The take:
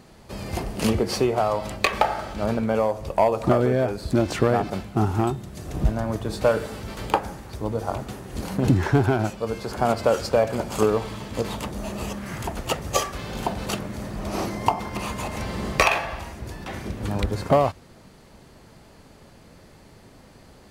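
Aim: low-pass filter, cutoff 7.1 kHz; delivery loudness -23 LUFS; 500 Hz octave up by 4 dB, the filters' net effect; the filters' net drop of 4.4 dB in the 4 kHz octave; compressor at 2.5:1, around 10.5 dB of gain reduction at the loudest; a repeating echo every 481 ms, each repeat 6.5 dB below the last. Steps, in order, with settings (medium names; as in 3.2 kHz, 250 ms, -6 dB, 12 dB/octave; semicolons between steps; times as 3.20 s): low-pass 7.1 kHz; peaking EQ 500 Hz +5 dB; peaking EQ 4 kHz -5.5 dB; compression 2.5:1, threshold -27 dBFS; feedback delay 481 ms, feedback 47%, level -6.5 dB; trim +6 dB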